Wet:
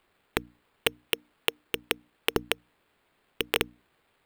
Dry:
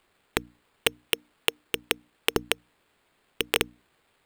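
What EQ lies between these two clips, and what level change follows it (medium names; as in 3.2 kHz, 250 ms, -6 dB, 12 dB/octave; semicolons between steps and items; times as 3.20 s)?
peaking EQ 7 kHz -5.5 dB 1.3 oct; -1.0 dB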